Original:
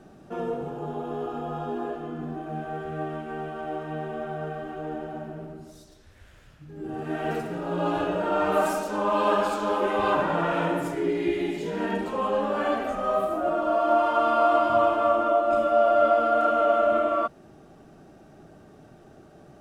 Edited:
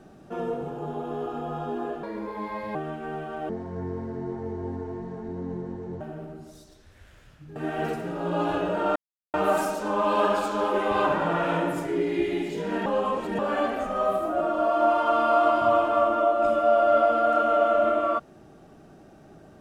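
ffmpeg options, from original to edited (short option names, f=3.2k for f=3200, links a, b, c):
-filter_complex "[0:a]asplit=9[a][b][c][d][e][f][g][h][i];[a]atrim=end=2.034[j];[b]atrim=start=2.03:end=3.01,asetpts=PTS-STARTPTS,asetrate=59976,aresample=44100[k];[c]atrim=start=3.006:end=3.754[l];[d]atrim=start=3.75:end=5.21,asetpts=PTS-STARTPTS,asetrate=25578,aresample=44100,atrim=end_sample=111010,asetpts=PTS-STARTPTS[m];[e]atrim=start=5.206:end=6.762[n];[f]atrim=start=7.018:end=8.42,asetpts=PTS-STARTPTS,afade=t=out:st=1.398:d=0.004:c=hsin,apad=pad_dur=0.38[o];[g]atrim=start=8.42:end=11.942,asetpts=PTS-STARTPTS,afade=t=in:d=0.004:c=hsin[p];[h]atrim=start=11.938:end=12.472,asetpts=PTS-STARTPTS,areverse[q];[i]atrim=start=12.468[r];[j][k]acrossfade=d=0.004:c1=hsin:c2=hsin[s];[s][l]acrossfade=d=0.004:c1=hsin:c2=hsin[t];[t][m]acrossfade=d=0.004:c1=hsin:c2=hsin[u];[u][n]acrossfade=d=0.004:c1=hsin:c2=hsin[v];[o][p]concat=n=2:v=0:a=1[w];[v][w]acrossfade=d=0.004:c1=hsin:c2=hsin[x];[x][q]acrossfade=d=0.004:c1=hsin:c2=hsin[y];[y][r]acrossfade=d=0.004:c1=hsin:c2=hsin"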